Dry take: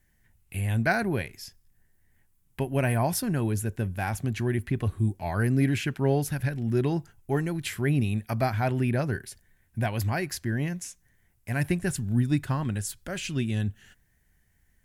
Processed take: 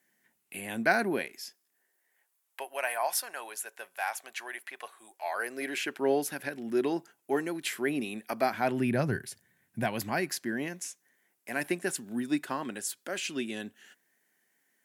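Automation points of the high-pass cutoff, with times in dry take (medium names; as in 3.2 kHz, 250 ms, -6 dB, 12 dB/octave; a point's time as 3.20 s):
high-pass 24 dB/octave
1.13 s 230 Hz
2.76 s 660 Hz
5.15 s 660 Hz
6.11 s 270 Hz
8.40 s 270 Hz
9.19 s 110 Hz
10.84 s 270 Hz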